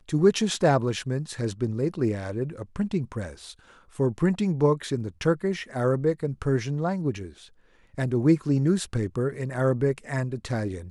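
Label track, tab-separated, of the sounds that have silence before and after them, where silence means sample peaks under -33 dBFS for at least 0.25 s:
3.990000	7.270000	sound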